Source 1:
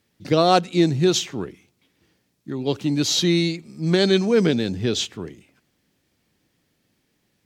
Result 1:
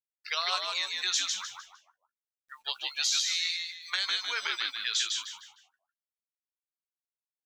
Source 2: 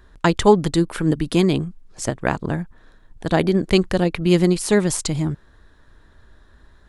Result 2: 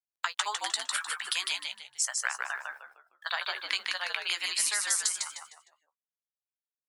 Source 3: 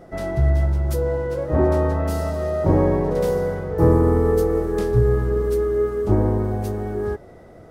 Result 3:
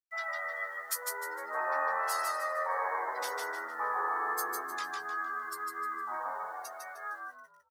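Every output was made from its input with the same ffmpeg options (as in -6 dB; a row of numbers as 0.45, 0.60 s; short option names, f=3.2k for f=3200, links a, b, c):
-filter_complex "[0:a]highpass=f=1.1k:w=0.5412,highpass=f=1.1k:w=1.3066,afftdn=nr=31:nf=-41,highshelf=f=5.3k:g=3,acompressor=threshold=-31dB:ratio=12,acrusher=bits=11:mix=0:aa=0.000001,asplit=2[a][b];[b]adelay=16,volume=-11dB[c];[a][c]amix=inputs=2:normalize=0,asplit=5[d][e][f][g][h];[e]adelay=153,afreqshift=-83,volume=-3.5dB[i];[f]adelay=306,afreqshift=-166,volume=-13.1dB[j];[g]adelay=459,afreqshift=-249,volume=-22.8dB[k];[h]adelay=612,afreqshift=-332,volume=-32.4dB[l];[d][i][j][k][l]amix=inputs=5:normalize=0,adynamicequalizer=threshold=0.00447:dfrequency=3600:dqfactor=0.7:tfrequency=3600:tqfactor=0.7:attack=5:release=100:ratio=0.375:range=1.5:mode=boostabove:tftype=highshelf,volume=2.5dB"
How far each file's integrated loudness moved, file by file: -9.0, -10.5, -14.0 LU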